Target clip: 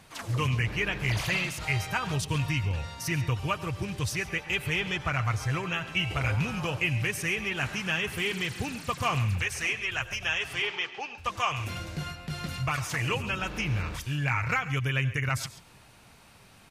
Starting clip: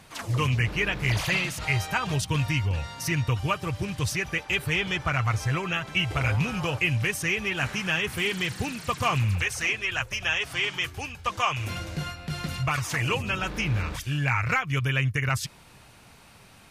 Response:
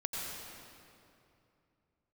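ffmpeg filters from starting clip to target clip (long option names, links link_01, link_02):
-filter_complex "[0:a]asettb=1/sr,asplit=3[link_01][link_02][link_03];[link_01]atrim=end=10.624[link_04];[link_02]atrim=start=10.62:end=11.18,asetpts=PTS-STARTPTS,afade=type=in:duration=0.004:curve=qsin,afade=type=out:start_time=0.556:duration=0.004:curve=qsin,highpass=frequency=210:width=0.5412,highpass=frequency=210:width=1.3066,equalizer=frequency=270:width_type=q:width=4:gain=-8,equalizer=frequency=410:width_type=q:width=4:gain=4,equalizer=frequency=840:width_type=q:width=4:gain=6,lowpass=frequency=5300:width=0.5412,lowpass=frequency=5300:width=1.3066[link_05];[link_03]atrim=start=11.176[link_06];[link_04][link_05]acrossfade=duration=0.004:curve1=hsin:curve2=qsin[link_07];[link_07][link_06]acrossfade=duration=0.004:curve1=qsin:curve2=hsin,aecho=1:1:137:0.141,asplit=2[link_08][link_09];[1:a]atrim=start_sample=2205,afade=type=out:start_time=0.17:duration=0.01,atrim=end_sample=7938[link_10];[link_09][link_10]afir=irnorm=-1:irlink=0,volume=-9.5dB[link_11];[link_08][link_11]amix=inputs=2:normalize=0,volume=-5dB"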